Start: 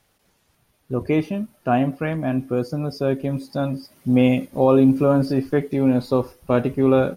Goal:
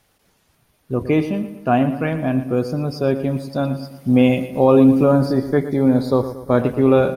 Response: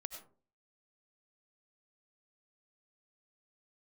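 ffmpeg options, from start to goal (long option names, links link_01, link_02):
-filter_complex "[0:a]asettb=1/sr,asplit=3[link_01][link_02][link_03];[link_01]atrim=end=5.114[link_04];[link_02]atrim=start=5.11:end=6.6,asetpts=PTS-STARTPTS,afade=type=in:duration=0.004:curve=qsin,afade=type=out:start_time=1.486:duration=0.004:curve=qsin,asuperstop=centerf=2700:order=4:qfactor=2.7[link_05];[link_03]atrim=start=6.596[link_06];[link_04][link_05]acrossfade=duration=0.004:curve1=hsin:curve2=qsin[link_07];[link_07][link_06]acrossfade=duration=0.004:curve1=qsin:curve2=hsin,asplit=2[link_08][link_09];[link_09]adelay=116,lowpass=frequency=4200:poles=1,volume=-12dB,asplit=2[link_10][link_11];[link_11]adelay=116,lowpass=frequency=4200:poles=1,volume=0.5,asplit=2[link_12][link_13];[link_13]adelay=116,lowpass=frequency=4200:poles=1,volume=0.5,asplit=2[link_14][link_15];[link_15]adelay=116,lowpass=frequency=4200:poles=1,volume=0.5,asplit=2[link_16][link_17];[link_17]adelay=116,lowpass=frequency=4200:poles=1,volume=0.5[link_18];[link_08][link_10][link_12][link_14][link_16][link_18]amix=inputs=6:normalize=0,volume=2.5dB"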